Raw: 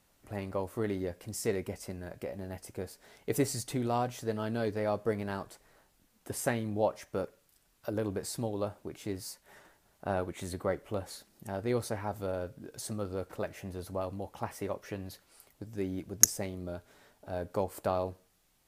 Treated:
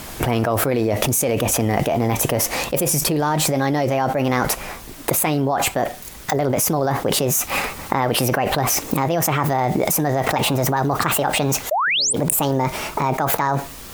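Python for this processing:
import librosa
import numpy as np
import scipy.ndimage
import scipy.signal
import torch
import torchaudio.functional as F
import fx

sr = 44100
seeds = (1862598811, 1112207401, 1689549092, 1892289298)

y = fx.speed_glide(x, sr, from_pct=117, to_pct=151)
y = fx.rider(y, sr, range_db=3, speed_s=2.0)
y = fx.spec_paint(y, sr, seeds[0], shape='rise', start_s=11.71, length_s=0.42, low_hz=560.0, high_hz=9500.0, level_db=-12.0)
y = fx.env_flatten(y, sr, amount_pct=100)
y = F.gain(torch.from_numpy(y), -7.0).numpy()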